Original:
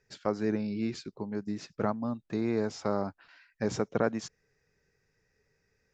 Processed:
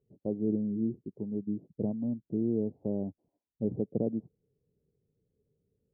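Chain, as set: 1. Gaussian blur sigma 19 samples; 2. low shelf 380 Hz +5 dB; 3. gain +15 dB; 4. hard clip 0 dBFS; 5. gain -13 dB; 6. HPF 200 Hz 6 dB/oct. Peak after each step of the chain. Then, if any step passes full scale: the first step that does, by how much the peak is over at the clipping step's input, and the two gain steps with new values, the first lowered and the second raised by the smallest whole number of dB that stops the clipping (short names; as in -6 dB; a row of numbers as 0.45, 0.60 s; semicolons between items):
-21.5, -18.0, -3.0, -3.0, -16.0, -17.5 dBFS; no overload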